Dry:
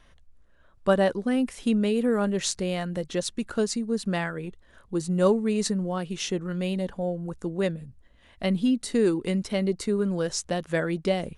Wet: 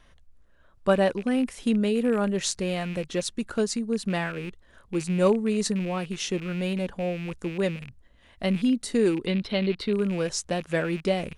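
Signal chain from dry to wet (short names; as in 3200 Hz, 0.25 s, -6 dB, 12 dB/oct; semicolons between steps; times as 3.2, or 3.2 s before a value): rattling part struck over -38 dBFS, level -31 dBFS; 9.26–9.93 resonant high shelf 5300 Hz -11 dB, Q 3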